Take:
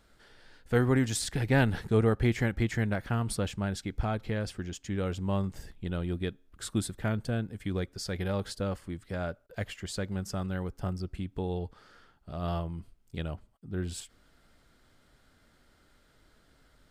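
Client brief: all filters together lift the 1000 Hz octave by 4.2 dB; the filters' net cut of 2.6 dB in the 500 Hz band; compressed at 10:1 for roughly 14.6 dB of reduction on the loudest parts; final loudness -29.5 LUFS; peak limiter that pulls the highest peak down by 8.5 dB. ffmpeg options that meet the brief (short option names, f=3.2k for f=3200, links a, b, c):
-af "equalizer=f=500:t=o:g=-5,equalizer=f=1k:t=o:g=7.5,acompressor=threshold=-35dB:ratio=10,volume=14.5dB,alimiter=limit=-19dB:level=0:latency=1"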